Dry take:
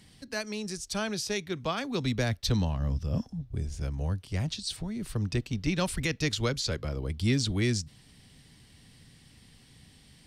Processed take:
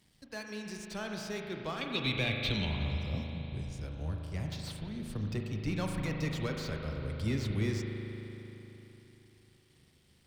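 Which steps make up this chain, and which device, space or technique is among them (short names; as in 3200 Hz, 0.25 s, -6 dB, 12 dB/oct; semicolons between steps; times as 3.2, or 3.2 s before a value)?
early transistor amplifier (crossover distortion -60 dBFS; slew limiter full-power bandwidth 72 Hz); 1.81–2.67 band shelf 2900 Hz +15 dB 1.1 oct; spring tank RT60 3.6 s, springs 38 ms, chirp 55 ms, DRR 1.5 dB; gain -7 dB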